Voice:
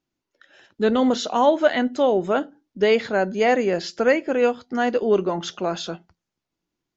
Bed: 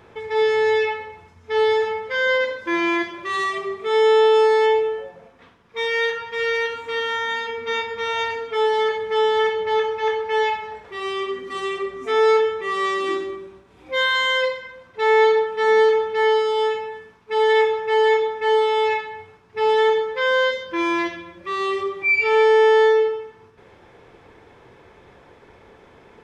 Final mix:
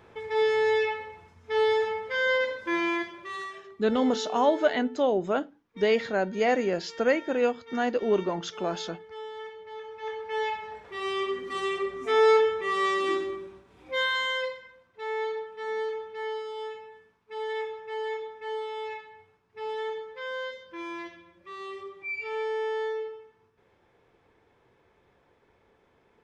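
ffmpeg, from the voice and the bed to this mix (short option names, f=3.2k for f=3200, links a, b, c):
-filter_complex "[0:a]adelay=3000,volume=-5.5dB[a];[1:a]volume=12dB,afade=t=out:st=2.72:d=0.94:silence=0.16788,afade=t=in:st=9.8:d=1.41:silence=0.133352,afade=t=out:st=13.42:d=1.45:silence=0.237137[b];[a][b]amix=inputs=2:normalize=0"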